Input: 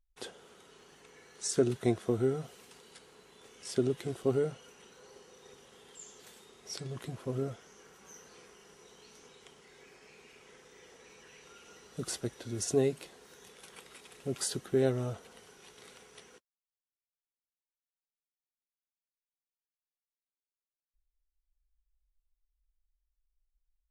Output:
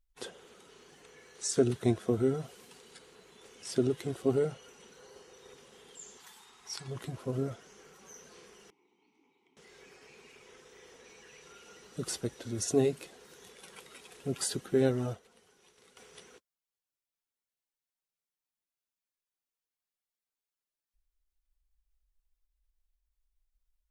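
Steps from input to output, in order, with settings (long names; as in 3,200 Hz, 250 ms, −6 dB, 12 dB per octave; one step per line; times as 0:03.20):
spectral magnitudes quantised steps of 15 dB
0:06.17–0:06.88: low shelf with overshoot 700 Hz −7 dB, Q 3
0:08.70–0:09.57: formant filter u
0:15.09–0:15.97: expander for the loud parts 1.5 to 1, over −56 dBFS
level +1.5 dB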